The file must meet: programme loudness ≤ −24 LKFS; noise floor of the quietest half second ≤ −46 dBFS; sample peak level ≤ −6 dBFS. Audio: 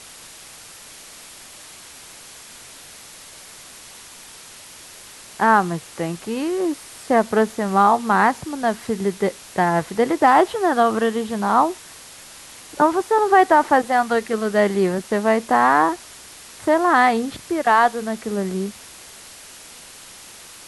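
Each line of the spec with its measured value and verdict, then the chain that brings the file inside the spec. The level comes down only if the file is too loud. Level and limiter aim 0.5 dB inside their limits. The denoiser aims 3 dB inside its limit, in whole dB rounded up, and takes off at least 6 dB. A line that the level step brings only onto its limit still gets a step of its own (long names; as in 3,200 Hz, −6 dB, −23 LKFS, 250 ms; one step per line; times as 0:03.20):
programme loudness −19.0 LKFS: out of spec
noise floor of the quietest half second −42 dBFS: out of spec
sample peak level −4.0 dBFS: out of spec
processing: level −5.5 dB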